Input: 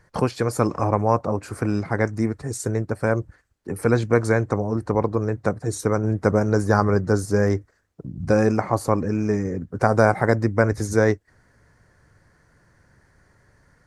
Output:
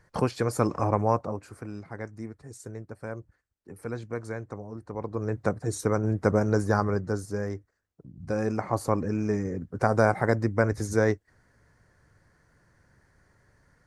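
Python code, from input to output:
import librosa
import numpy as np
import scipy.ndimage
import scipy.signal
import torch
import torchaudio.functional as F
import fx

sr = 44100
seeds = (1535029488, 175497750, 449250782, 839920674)

y = fx.gain(x, sr, db=fx.line((1.08, -4.0), (1.65, -15.5), (4.91, -15.5), (5.34, -4.0), (6.53, -4.0), (7.56, -13.0), (8.16, -13.0), (8.78, -5.0)))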